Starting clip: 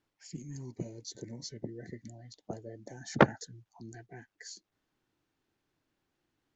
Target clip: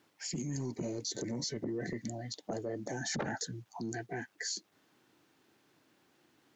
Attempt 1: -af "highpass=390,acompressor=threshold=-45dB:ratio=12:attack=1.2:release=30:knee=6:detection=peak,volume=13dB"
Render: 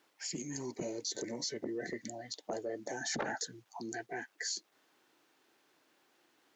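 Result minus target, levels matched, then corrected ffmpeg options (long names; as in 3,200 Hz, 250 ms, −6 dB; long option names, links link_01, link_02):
125 Hz band −9.5 dB
-af "highpass=160,acompressor=threshold=-45dB:ratio=12:attack=1.2:release=30:knee=6:detection=peak,volume=13dB"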